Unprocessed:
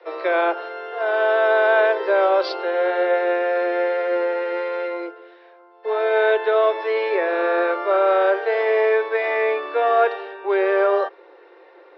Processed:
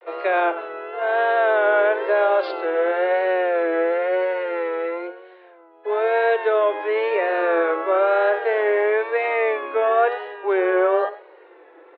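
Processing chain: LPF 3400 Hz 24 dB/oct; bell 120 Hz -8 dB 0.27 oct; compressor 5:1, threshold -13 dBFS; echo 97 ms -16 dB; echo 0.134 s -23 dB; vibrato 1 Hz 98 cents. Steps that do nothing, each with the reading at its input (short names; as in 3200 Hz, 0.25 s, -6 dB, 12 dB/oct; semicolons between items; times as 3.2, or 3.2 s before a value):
bell 120 Hz: input band starts at 320 Hz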